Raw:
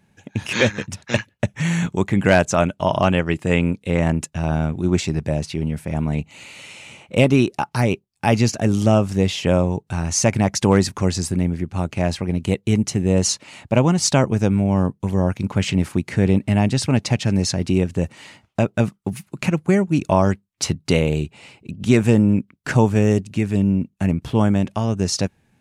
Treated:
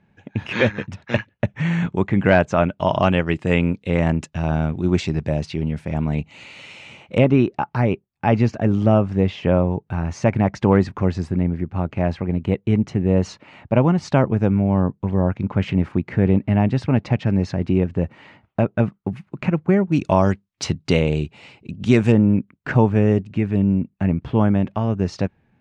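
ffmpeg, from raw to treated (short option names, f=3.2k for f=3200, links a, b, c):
-af "asetnsamples=n=441:p=0,asendcmd='2.79 lowpass f 4400;7.18 lowpass f 2000;19.92 lowpass f 4800;22.12 lowpass f 2300',lowpass=2.6k"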